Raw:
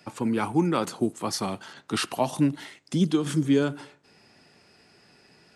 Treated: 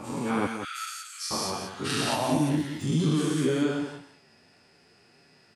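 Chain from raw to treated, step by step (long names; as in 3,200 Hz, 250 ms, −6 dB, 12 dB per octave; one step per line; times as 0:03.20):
every bin's largest magnitude spread in time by 240 ms
0:00.46–0:01.31: Chebyshev high-pass filter 1,300 Hz, order 8
0:02.05–0:03.25: surface crackle 10 per second −26 dBFS
multi-voice chorus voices 2, 1 Hz, delay 10 ms, depth 3 ms
single-tap delay 177 ms −8.5 dB
level −5 dB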